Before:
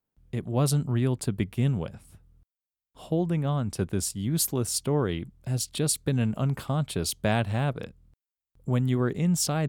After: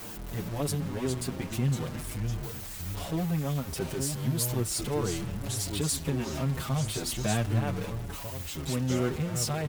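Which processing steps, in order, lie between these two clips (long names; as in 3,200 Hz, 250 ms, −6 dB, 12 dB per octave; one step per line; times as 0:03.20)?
converter with a step at zero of −26.5 dBFS
delay with pitch and tempo change per echo 280 ms, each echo −3 semitones, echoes 2, each echo −6 dB
barber-pole flanger 6.4 ms −0.4 Hz
level −4 dB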